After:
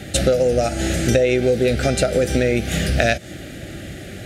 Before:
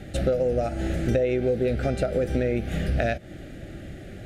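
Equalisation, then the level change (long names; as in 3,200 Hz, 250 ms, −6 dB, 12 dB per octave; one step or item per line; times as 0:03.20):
high-pass filter 55 Hz
dynamic equaliser 6,700 Hz, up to +5 dB, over −53 dBFS, Q 0.9
high-shelf EQ 2,300 Hz +10.5 dB
+6.0 dB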